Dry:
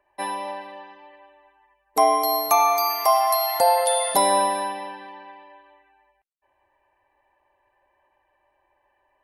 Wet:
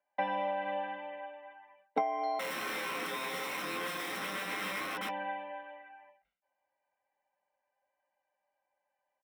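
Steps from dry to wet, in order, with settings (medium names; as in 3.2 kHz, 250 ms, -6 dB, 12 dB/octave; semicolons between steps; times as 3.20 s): low-pass 3.8 kHz 24 dB/octave; hum notches 50/100/150 Hz; gate with hold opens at -54 dBFS; band-stop 1.3 kHz, Q 14; comb 1.4 ms, depth 93%; compression 8:1, threshold -33 dBFS, peak gain reduction 23 dB; 2.39–5.09 s: integer overflow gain 35 dB; reverberation, pre-delay 3 ms, DRR 5.5 dB; decay stretcher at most 130 dB/s; trim -4 dB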